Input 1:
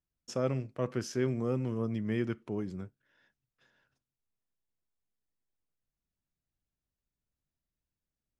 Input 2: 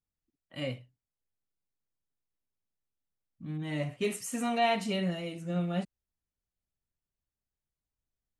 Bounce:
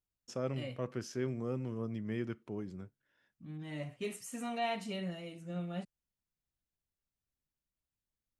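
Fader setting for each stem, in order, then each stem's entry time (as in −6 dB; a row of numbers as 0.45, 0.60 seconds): −5.5, −8.0 decibels; 0.00, 0.00 seconds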